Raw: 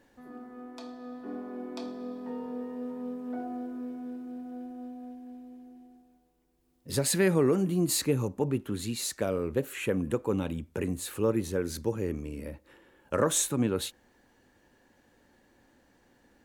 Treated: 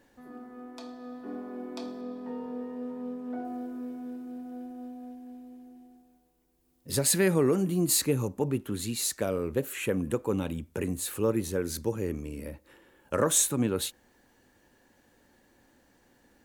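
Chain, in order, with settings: high shelf 7200 Hz +3.5 dB, from 2.01 s -4 dB, from 3.45 s +7 dB

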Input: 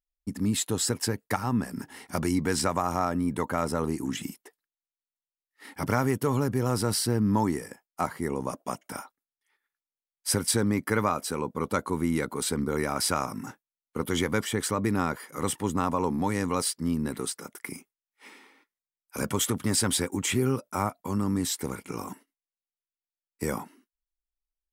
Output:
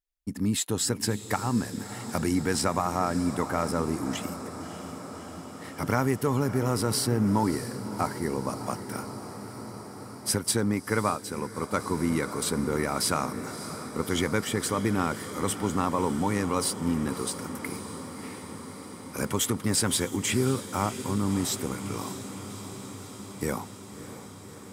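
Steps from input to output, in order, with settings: diffused feedback echo 0.614 s, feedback 76%, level -12.5 dB; 10.31–11.8 upward expander 1.5:1, over -35 dBFS

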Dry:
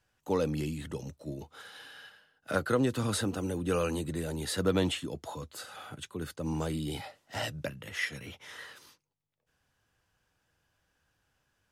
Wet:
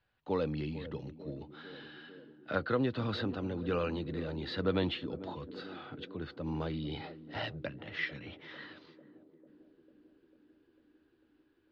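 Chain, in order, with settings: elliptic low-pass 4300 Hz, stop band 70 dB; on a send: narrowing echo 0.447 s, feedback 79%, band-pass 320 Hz, level -12.5 dB; on the sum: gain -2.5 dB

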